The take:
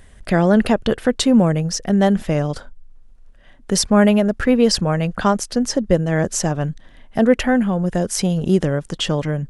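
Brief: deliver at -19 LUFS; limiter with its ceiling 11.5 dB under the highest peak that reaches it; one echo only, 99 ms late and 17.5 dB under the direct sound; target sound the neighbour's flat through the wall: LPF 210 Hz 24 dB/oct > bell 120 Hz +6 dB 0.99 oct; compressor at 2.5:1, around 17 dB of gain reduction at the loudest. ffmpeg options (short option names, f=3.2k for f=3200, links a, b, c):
-af "acompressor=threshold=-36dB:ratio=2.5,alimiter=level_in=3dB:limit=-24dB:level=0:latency=1,volume=-3dB,lowpass=f=210:w=0.5412,lowpass=f=210:w=1.3066,equalizer=f=120:t=o:w=0.99:g=6,aecho=1:1:99:0.133,volume=19.5dB"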